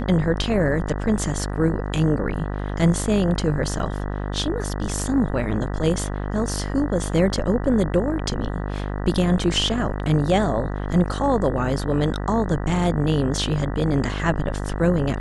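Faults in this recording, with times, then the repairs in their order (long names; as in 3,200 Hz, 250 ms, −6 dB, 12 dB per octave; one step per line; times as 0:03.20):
mains buzz 50 Hz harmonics 39 −27 dBFS
0:03.79: drop-out 4.3 ms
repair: hum removal 50 Hz, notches 39
repair the gap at 0:03.79, 4.3 ms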